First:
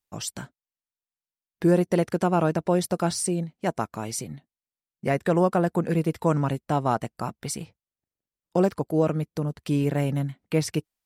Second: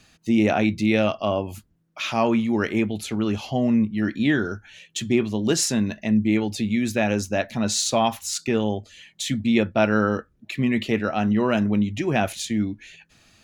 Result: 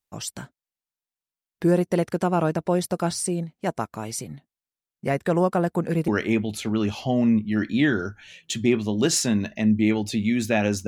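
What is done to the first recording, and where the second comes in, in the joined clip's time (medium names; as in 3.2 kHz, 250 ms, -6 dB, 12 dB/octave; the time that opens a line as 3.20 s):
first
6.08 s: go over to second from 2.54 s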